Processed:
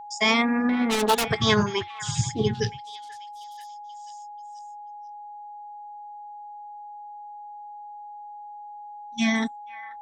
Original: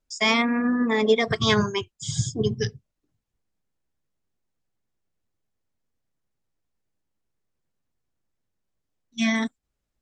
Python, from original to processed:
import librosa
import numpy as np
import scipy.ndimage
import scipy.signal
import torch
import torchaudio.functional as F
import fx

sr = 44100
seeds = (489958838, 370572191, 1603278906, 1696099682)

y = fx.self_delay(x, sr, depth_ms=0.79, at=(0.69, 1.27))
y = fx.echo_stepped(y, sr, ms=485, hz=1500.0, octaves=0.7, feedback_pct=70, wet_db=-12)
y = y + 10.0 ** (-38.0 / 20.0) * np.sin(2.0 * np.pi * 830.0 * np.arange(len(y)) / sr)